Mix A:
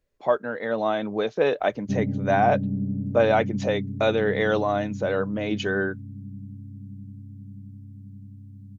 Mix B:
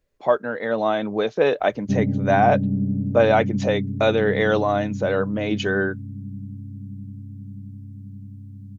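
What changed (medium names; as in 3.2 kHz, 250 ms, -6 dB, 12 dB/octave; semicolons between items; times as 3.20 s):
speech +3.0 dB; background +4.5 dB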